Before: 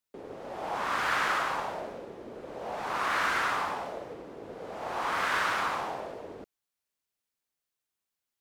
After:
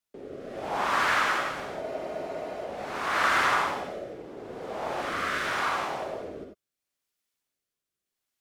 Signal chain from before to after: rotary cabinet horn 0.8 Hz; gated-style reverb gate 110 ms rising, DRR 2.5 dB; spectral freeze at 1.84 s, 0.81 s; trim +3.5 dB

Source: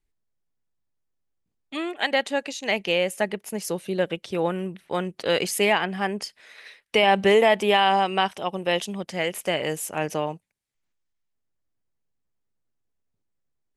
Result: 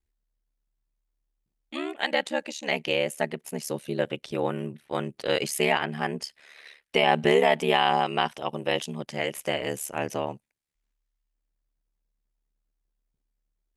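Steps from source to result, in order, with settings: ring modulator 36 Hz

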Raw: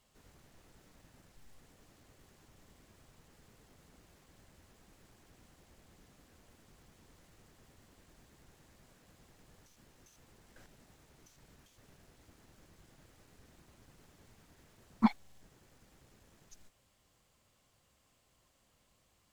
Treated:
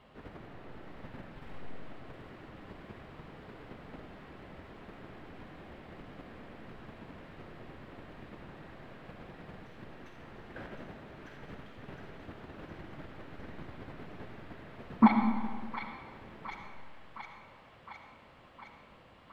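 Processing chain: bass shelf 93 Hz -11.5 dB; in parallel at 0 dB: level held to a coarse grid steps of 16 dB; on the sum: peak limiter -24 dBFS, peak gain reduction 11.5 dB; distance through air 480 m; on a send: feedback echo behind a high-pass 712 ms, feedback 71%, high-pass 1.5 kHz, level -5 dB; on the sum: algorithmic reverb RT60 1.6 s, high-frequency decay 0.8×, pre-delay 25 ms, DRR 4 dB; trim +14.5 dB

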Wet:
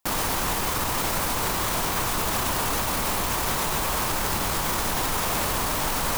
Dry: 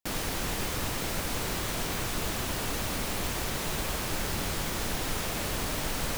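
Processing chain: peaking EQ 1 kHz +9 dB 0.97 oct; peak limiter -26.5 dBFS, peak gain reduction 9.5 dB; treble shelf 7.4 kHz +6.5 dB; trim +9 dB

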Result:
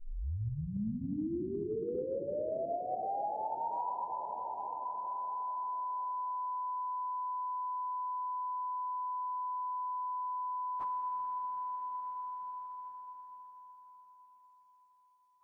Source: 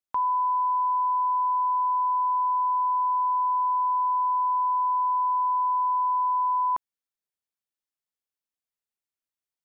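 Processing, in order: tape start-up on the opening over 2.47 s; Schroeder reverb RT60 3.6 s, combs from 26 ms, DRR 2.5 dB; plain phase-vocoder stretch 1.6×; compression 3:1, threshold -41 dBFS, peak gain reduction 15 dB; trim +2.5 dB

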